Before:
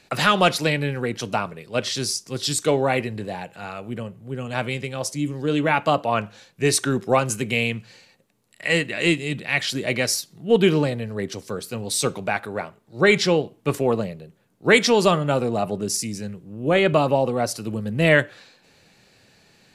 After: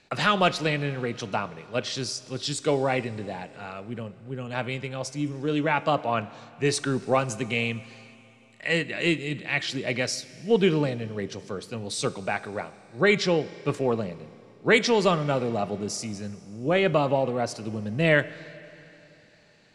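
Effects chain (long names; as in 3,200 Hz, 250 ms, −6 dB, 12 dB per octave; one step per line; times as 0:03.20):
Bessel low-pass filter 6,400 Hz, order 8
four-comb reverb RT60 3.2 s, combs from 27 ms, DRR 17 dB
level −4 dB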